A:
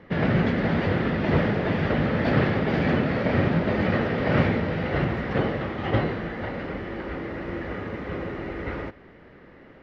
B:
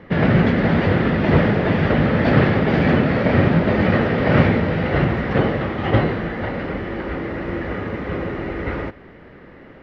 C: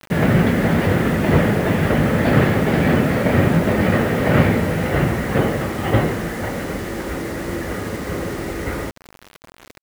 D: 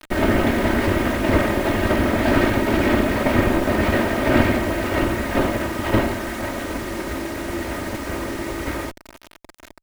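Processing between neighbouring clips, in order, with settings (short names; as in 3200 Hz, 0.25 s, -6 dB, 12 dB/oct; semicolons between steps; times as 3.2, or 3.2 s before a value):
tone controls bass +1 dB, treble -3 dB; gain +6 dB
bit-crush 6-bit
minimum comb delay 3.2 ms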